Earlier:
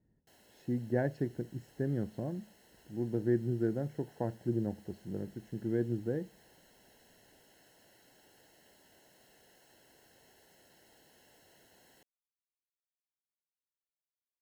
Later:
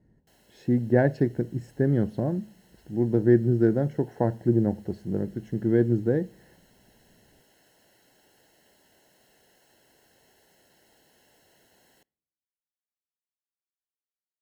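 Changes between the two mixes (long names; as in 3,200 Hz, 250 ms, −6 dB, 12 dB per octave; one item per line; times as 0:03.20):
speech +10.0 dB
reverb: on, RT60 0.75 s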